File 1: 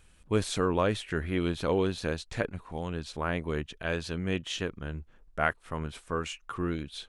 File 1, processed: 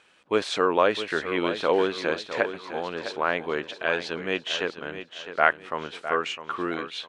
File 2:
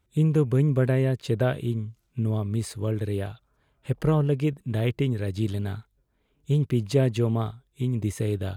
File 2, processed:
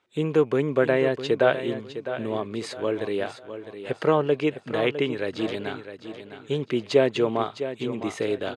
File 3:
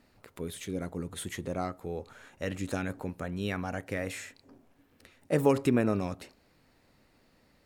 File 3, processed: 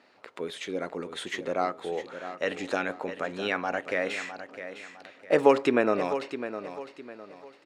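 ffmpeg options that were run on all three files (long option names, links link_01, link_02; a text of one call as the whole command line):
ffmpeg -i in.wav -af "highpass=420,lowpass=4300,aecho=1:1:657|1314|1971|2628:0.282|0.0958|0.0326|0.0111,volume=8dB" out.wav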